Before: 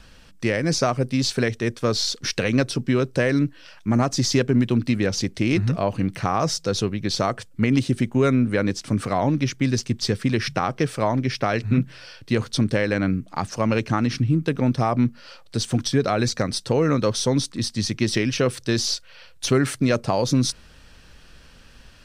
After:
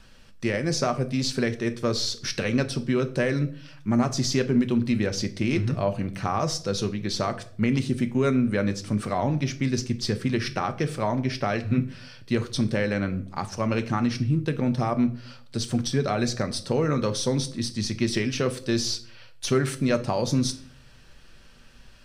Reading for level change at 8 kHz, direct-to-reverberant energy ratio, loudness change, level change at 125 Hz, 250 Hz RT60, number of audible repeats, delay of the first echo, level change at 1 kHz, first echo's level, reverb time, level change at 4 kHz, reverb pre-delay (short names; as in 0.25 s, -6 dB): -4.0 dB, 8.0 dB, -3.5 dB, -3.5 dB, 0.70 s, none, none, -4.0 dB, none, 0.55 s, -4.0 dB, 5 ms